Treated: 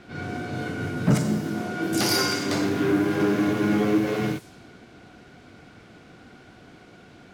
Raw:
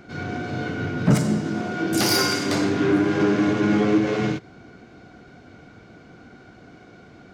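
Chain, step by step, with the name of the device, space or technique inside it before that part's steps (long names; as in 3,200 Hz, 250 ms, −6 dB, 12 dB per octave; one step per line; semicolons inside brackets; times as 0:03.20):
cassette deck with a dynamic noise filter (white noise bed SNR 24 dB; low-pass that shuts in the quiet parts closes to 2,800 Hz, open at −20 dBFS)
level −2.5 dB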